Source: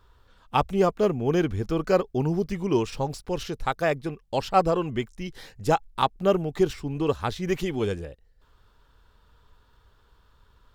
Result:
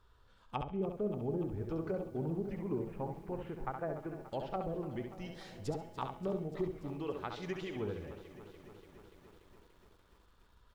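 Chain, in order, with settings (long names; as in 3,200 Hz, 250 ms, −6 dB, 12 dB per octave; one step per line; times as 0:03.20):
0:02.59–0:04.21: low-pass filter 2,200 Hz 24 dB per octave
0:07.00–0:07.76: spectral tilt +2 dB per octave
treble cut that deepens with the level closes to 420 Hz, closed at −18.5 dBFS
in parallel at +1 dB: downward compressor 5 to 1, threshold −37 dBFS, peak gain reduction 17.5 dB
on the sum: tuned comb filter 210 Hz, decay 1.3 s, mix 60%
on a send: repeating echo 68 ms, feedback 23%, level −6 dB
on the sum: feedback echo at a low word length 290 ms, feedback 80%, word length 9 bits, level −14.5 dB
level −7 dB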